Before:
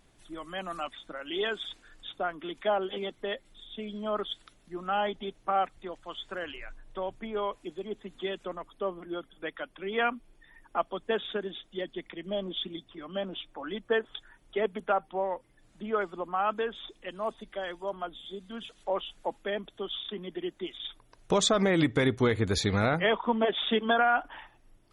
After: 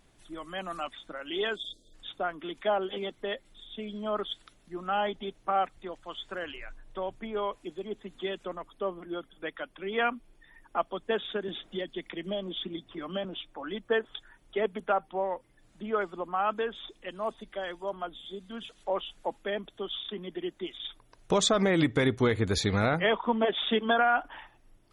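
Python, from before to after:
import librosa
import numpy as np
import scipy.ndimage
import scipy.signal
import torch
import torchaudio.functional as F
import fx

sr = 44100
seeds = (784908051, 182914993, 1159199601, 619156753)

y = fx.spec_erase(x, sr, start_s=1.56, length_s=0.39, low_hz=680.0, high_hz=3200.0)
y = fx.band_squash(y, sr, depth_pct=70, at=(11.48, 13.25))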